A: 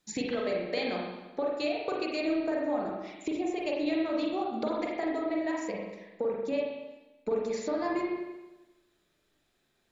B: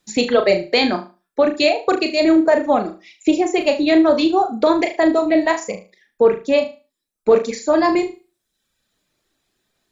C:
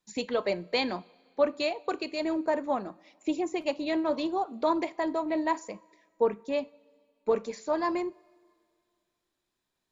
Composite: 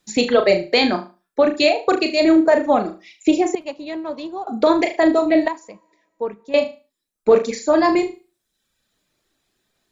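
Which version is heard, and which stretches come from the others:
B
0:03.55–0:04.47: punch in from C
0:05.48–0:06.54: punch in from C
not used: A

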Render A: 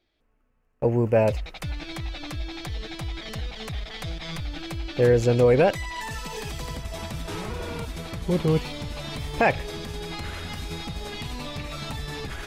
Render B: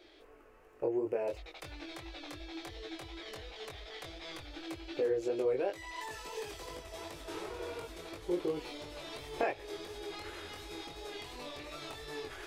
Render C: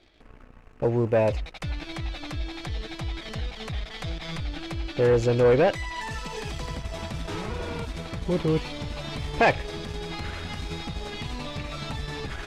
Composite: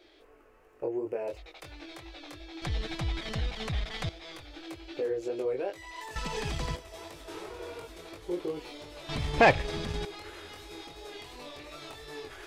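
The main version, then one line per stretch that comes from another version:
B
0:02.62–0:04.09: punch in from C
0:06.16–0:06.76: punch in from C
0:09.09–0:10.05: punch in from C
not used: A

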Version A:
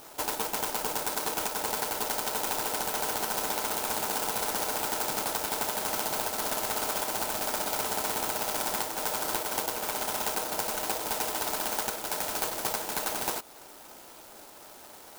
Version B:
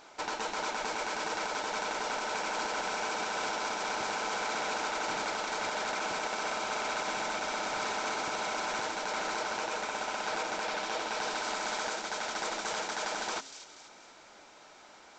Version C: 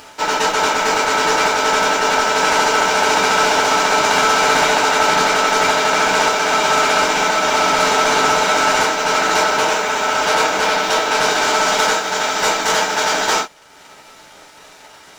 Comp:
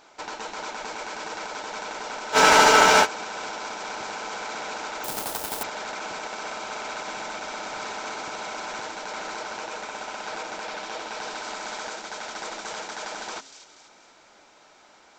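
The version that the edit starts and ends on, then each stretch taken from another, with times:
B
0:02.35–0:03.04: punch in from C, crossfade 0.06 s
0:05.04–0:05.63: punch in from A

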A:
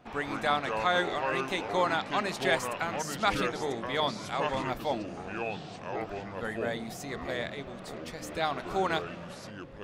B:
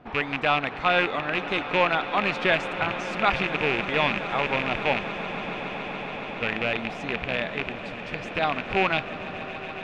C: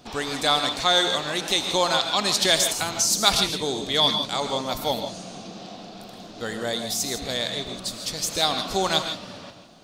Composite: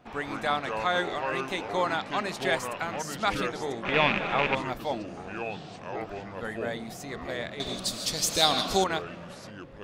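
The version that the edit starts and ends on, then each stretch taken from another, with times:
A
0:03.85–0:04.55: punch in from B
0:07.60–0:08.84: punch in from C

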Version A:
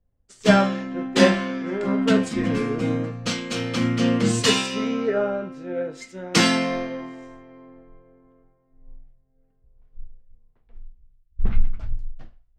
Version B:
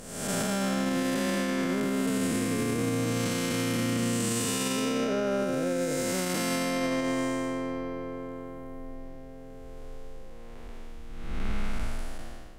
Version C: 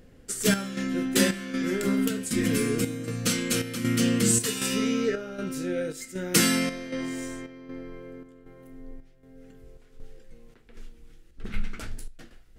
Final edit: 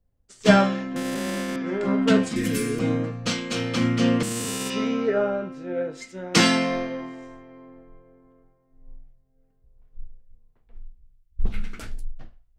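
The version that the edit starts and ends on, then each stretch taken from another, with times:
A
0:00.96–0:01.56: punch in from B
0:02.36–0:02.79: punch in from C
0:04.23–0:04.70: punch in from B
0:11.49–0:11.97: punch in from C, crossfade 0.16 s

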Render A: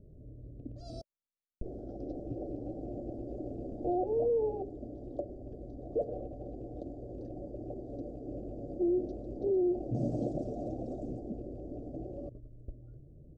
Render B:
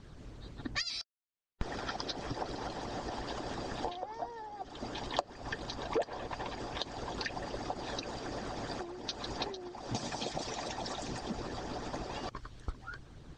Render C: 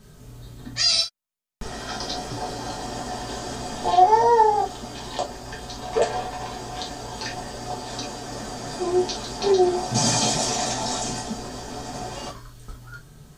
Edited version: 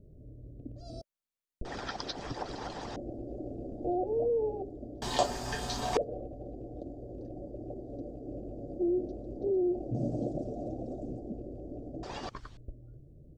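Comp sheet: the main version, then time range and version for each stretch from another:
A
0:01.65–0:02.96: punch in from B
0:05.02–0:05.97: punch in from C
0:12.03–0:12.57: punch in from B

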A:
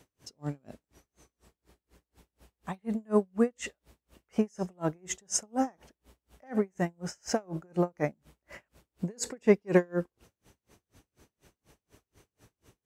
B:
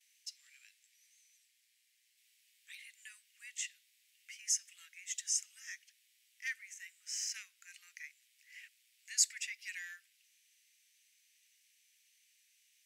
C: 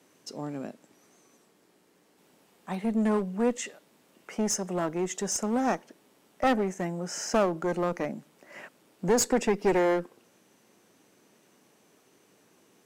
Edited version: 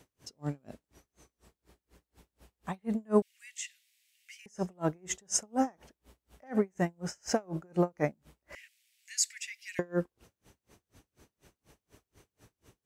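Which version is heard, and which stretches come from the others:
A
0:03.22–0:04.46: punch in from B
0:08.55–0:09.79: punch in from B
not used: C

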